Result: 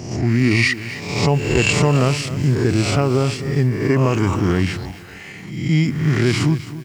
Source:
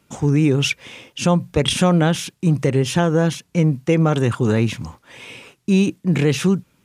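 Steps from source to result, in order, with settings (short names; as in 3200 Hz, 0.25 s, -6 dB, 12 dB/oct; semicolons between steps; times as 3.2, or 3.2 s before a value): spectral swells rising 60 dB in 0.87 s; pitch shift -3.5 st; lo-fi delay 0.263 s, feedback 35%, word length 6-bit, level -14 dB; gain -1 dB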